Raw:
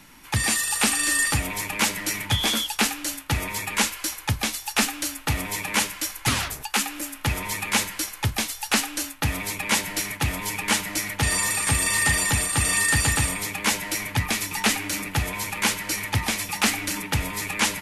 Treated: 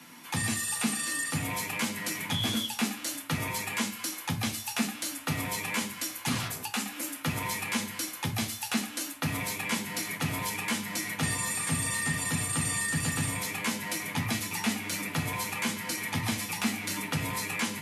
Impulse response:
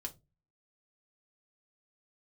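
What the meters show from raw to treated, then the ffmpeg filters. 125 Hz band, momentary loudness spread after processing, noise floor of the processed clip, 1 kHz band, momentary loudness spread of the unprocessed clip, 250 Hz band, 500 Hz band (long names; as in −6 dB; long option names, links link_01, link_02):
−6.0 dB, 4 LU, −43 dBFS, −7.0 dB, 8 LU, −2.0 dB, −6.5 dB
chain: -filter_complex "[0:a]acrossover=split=240[link_01][link_02];[link_02]acompressor=threshold=-30dB:ratio=6[link_03];[link_01][link_03]amix=inputs=2:normalize=0,highpass=frequency=130:width=0.5412,highpass=frequency=130:width=1.3066[link_04];[1:a]atrim=start_sample=2205,asetrate=30429,aresample=44100[link_05];[link_04][link_05]afir=irnorm=-1:irlink=0"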